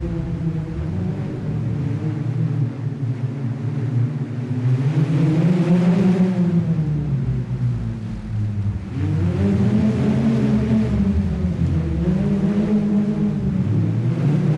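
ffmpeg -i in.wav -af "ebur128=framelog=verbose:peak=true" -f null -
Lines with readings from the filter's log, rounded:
Integrated loudness:
  I:         -20.4 LUFS
  Threshold: -30.4 LUFS
Loudness range:
  LRA:         4.9 LU
  Threshold: -40.2 LUFS
  LRA low:   -23.4 LUFS
  LRA high:  -18.5 LUFS
True peak:
  Peak:       -9.2 dBFS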